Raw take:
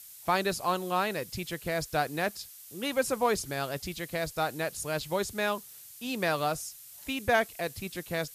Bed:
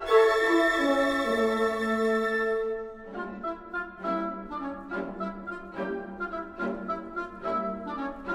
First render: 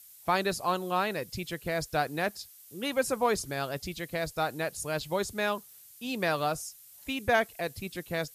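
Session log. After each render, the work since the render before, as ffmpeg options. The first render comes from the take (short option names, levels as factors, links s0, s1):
-af "afftdn=nr=6:nf=-49"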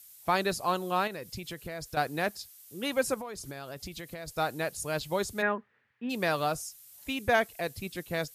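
-filter_complex "[0:a]asettb=1/sr,asplit=3[s0][s1][s2];[s0]atrim=end=1.074[s3];[s1]atrim=start=1.07:end=1.97,asetpts=PTS-STARTPTS,afade=t=in:d=0.004:c=qsin,afade=t=out:st=0.896:d=0.004:c=qsin,acompressor=threshold=0.0178:ratio=4:attack=3.2:release=140:knee=1:detection=peak[s4];[s2]atrim=start=1.966[s5];[s3][s4]acrossfade=d=0.004:c1=hsin:c2=qsin[s6];[s6][s5]acrossfade=d=0.004:c1=qsin:c2=hsin,asettb=1/sr,asplit=3[s7][s8][s9];[s7]atrim=end=3.144[s10];[s8]atrim=start=3.14:end=4.28,asetpts=PTS-STARTPTS,afade=t=in:d=0.004:c=qsin,afade=t=out:st=1.136:d=0.004:c=qsin,acompressor=threshold=0.0158:ratio=8:attack=3.2:release=140:knee=1:detection=peak[s11];[s9]atrim=start=4.276[s12];[s10][s11]acrossfade=d=0.004:c1=hsin:c2=qsin[s13];[s13][s12]acrossfade=d=0.004:c1=qsin:c2=hsin,asplit=3[s14][s15][s16];[s14]afade=t=out:st=5.41:d=0.02[s17];[s15]highpass=100,equalizer=f=160:t=q:w=4:g=-7,equalizer=f=230:t=q:w=4:g=6,equalizer=f=450:t=q:w=4:g=4,equalizer=f=690:t=q:w=4:g=-3,equalizer=f=1800:t=q:w=4:g=9,lowpass=f=2100:w=0.5412,lowpass=f=2100:w=1.3066,afade=t=in:st=5.41:d=0.02,afade=t=out:st=6.09:d=0.02[s18];[s16]afade=t=in:st=6.09:d=0.02[s19];[s17][s18][s19]amix=inputs=3:normalize=0"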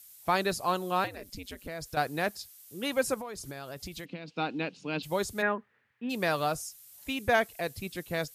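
-filter_complex "[0:a]asettb=1/sr,asplit=3[s0][s1][s2];[s0]atrim=end=1.044[s3];[s1]atrim=start=1.04:end=1.68,asetpts=PTS-STARTPTS,afade=t=in:d=0.004:c=qsin,afade=t=out:st=0.636:d=0.004:c=qsin,aeval=exprs='val(0)*sin(2*PI*96*n/s)':c=same[s4];[s2]atrim=start=1.676[s5];[s3][s4]acrossfade=d=0.004:c1=hsin:c2=qsin[s6];[s6][s5]acrossfade=d=0.004:c1=qsin:c2=hsin,asplit=3[s7][s8][s9];[s7]afade=t=out:st=4.04:d=0.02[s10];[s8]highpass=f=170:w=0.5412,highpass=f=170:w=1.3066,equalizer=f=180:t=q:w=4:g=8,equalizer=f=280:t=q:w=4:g=10,equalizer=f=630:t=q:w=4:g=-8,equalizer=f=1200:t=q:w=4:g=-4,equalizer=f=1800:t=q:w=4:g=-7,equalizer=f=2700:t=q:w=4:g=9,lowpass=f=4100:w=0.5412,lowpass=f=4100:w=1.3066,afade=t=in:st=4.04:d=0.02,afade=t=out:st=5.02:d=0.02[s11];[s9]afade=t=in:st=5.02:d=0.02[s12];[s10][s11][s12]amix=inputs=3:normalize=0"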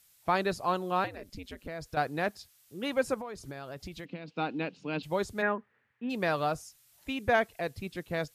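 -af "lowpass=f=2800:p=1"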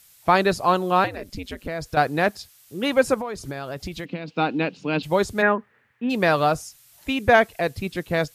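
-af "volume=3.16"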